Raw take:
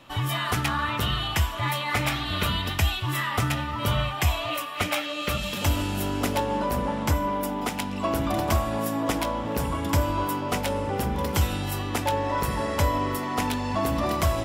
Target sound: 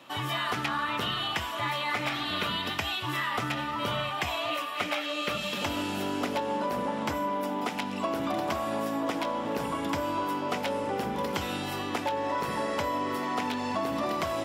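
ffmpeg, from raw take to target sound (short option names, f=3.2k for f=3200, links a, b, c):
-filter_complex "[0:a]acrossover=split=5500[a][b];[b]acompressor=threshold=-46dB:ratio=4:attack=1:release=60[c];[a][c]amix=inputs=2:normalize=0,highpass=210,acompressor=threshold=-26dB:ratio=6"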